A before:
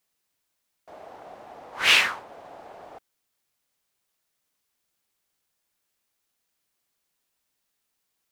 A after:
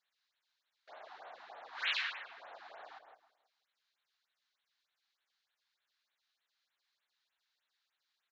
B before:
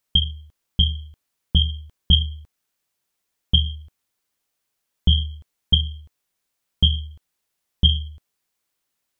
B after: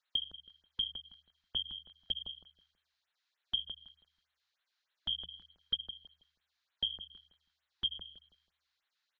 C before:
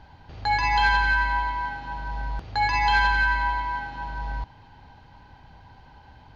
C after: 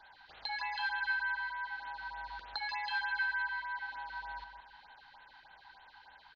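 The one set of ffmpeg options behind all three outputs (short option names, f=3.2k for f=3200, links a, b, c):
-filter_complex "[0:a]acrossover=split=560 5700:gain=0.112 1 0.178[a][b][c];[a][b][c]amix=inputs=3:normalize=0,acompressor=threshold=-39dB:ratio=2.5,aresample=16000,aresample=44100,equalizer=f=100:t=o:w=0.67:g=-11,equalizer=f=1.6k:t=o:w=0.67:g=7,equalizer=f=4k:t=o:w=0.67:g=11,asplit=2[d][e];[e]adelay=162,lowpass=f=2.5k:p=1,volume=-7dB,asplit=2[f][g];[g]adelay=162,lowpass=f=2.5k:p=1,volume=0.33,asplit=2[h][i];[i]adelay=162,lowpass=f=2.5k:p=1,volume=0.33,asplit=2[j][k];[k]adelay=162,lowpass=f=2.5k:p=1,volume=0.33[l];[f][h][j][l]amix=inputs=4:normalize=0[m];[d][m]amix=inputs=2:normalize=0,afftfilt=real='re*(1-between(b*sr/1024,430*pow(6300/430,0.5+0.5*sin(2*PI*3.3*pts/sr))/1.41,430*pow(6300/430,0.5+0.5*sin(2*PI*3.3*pts/sr))*1.41))':imag='im*(1-between(b*sr/1024,430*pow(6300/430,0.5+0.5*sin(2*PI*3.3*pts/sr))/1.41,430*pow(6300/430,0.5+0.5*sin(2*PI*3.3*pts/sr))*1.41))':win_size=1024:overlap=0.75,volume=-6dB"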